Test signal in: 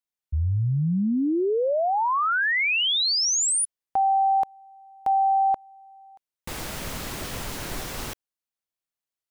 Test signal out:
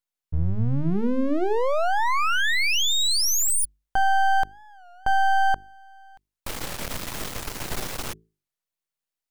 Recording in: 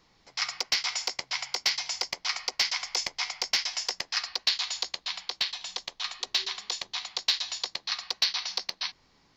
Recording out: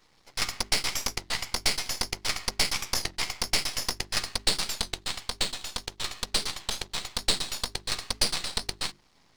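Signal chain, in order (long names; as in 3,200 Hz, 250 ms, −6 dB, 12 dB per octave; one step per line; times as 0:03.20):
half-wave rectification
mains-hum notches 50/100/150/200/250/300/350/400 Hz
wow of a warped record 33 1/3 rpm, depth 160 cents
level +5 dB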